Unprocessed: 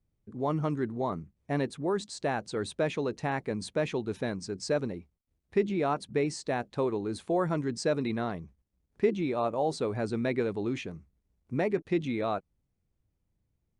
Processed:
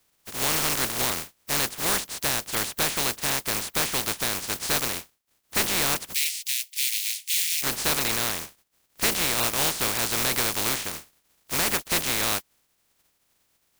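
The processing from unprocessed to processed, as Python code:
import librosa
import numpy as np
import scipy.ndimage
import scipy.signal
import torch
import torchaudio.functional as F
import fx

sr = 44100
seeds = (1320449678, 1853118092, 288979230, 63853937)

y = fx.spec_flatten(x, sr, power=0.14)
y = 10.0 ** (-25.5 / 20.0) * np.tanh(y / 10.0 ** (-25.5 / 20.0))
y = fx.steep_highpass(y, sr, hz=2100.0, slope=48, at=(6.13, 7.62), fade=0.02)
y = F.gain(torch.from_numpy(y), 8.0).numpy()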